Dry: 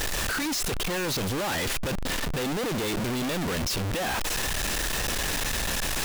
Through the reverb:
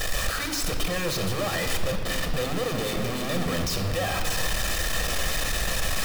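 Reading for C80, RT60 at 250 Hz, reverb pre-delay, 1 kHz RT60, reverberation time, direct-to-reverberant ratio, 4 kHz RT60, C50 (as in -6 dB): 8.5 dB, 2.6 s, 5 ms, 2.0 s, 2.2 s, 5.0 dB, 1.7 s, 6.5 dB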